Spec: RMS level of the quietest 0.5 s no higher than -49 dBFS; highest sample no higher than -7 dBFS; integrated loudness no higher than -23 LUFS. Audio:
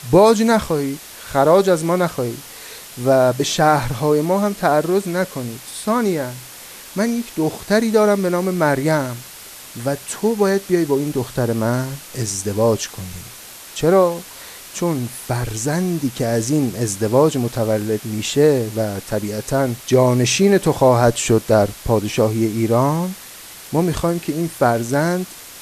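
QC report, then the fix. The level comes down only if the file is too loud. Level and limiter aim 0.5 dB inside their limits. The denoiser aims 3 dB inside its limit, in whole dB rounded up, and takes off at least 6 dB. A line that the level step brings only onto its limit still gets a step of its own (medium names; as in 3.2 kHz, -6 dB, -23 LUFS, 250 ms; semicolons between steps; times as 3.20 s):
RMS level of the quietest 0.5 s -38 dBFS: fail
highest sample -2.0 dBFS: fail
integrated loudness -18.5 LUFS: fail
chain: noise reduction 9 dB, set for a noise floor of -38 dBFS; trim -5 dB; peak limiter -7.5 dBFS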